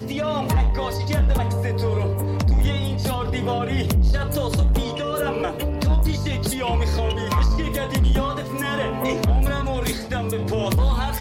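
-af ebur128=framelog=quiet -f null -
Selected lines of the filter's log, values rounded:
Integrated loudness:
  I:         -22.6 LUFS
  Threshold: -32.6 LUFS
Loudness range:
  LRA:         0.8 LU
  Threshold: -42.6 LUFS
  LRA low:   -23.0 LUFS
  LRA high:  -22.2 LUFS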